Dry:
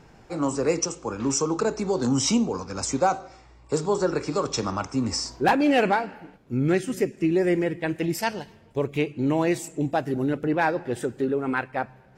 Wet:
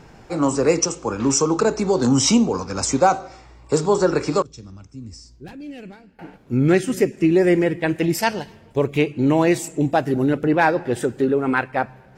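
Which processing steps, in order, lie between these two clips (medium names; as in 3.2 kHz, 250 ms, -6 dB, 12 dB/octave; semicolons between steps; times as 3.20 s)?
4.42–6.19 s: amplifier tone stack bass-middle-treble 10-0-1; trim +6 dB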